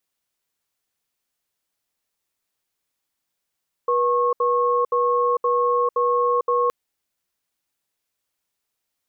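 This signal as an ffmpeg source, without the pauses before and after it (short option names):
-f lavfi -i "aevalsrc='0.106*(sin(2*PI*485*t)+sin(2*PI*1090*t))*clip(min(mod(t,0.52),0.45-mod(t,0.52))/0.005,0,1)':d=2.82:s=44100"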